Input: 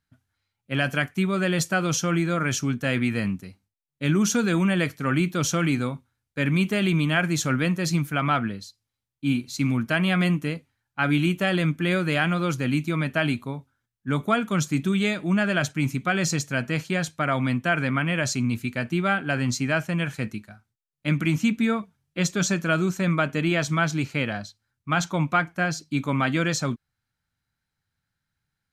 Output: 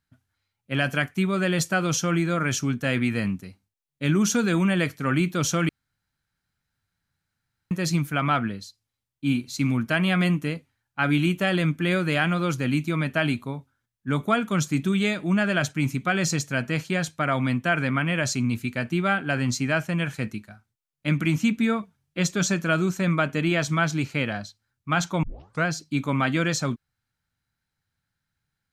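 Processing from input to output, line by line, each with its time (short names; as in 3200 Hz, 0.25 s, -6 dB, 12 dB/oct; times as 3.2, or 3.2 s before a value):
5.69–7.71 room tone
25.23 tape start 0.42 s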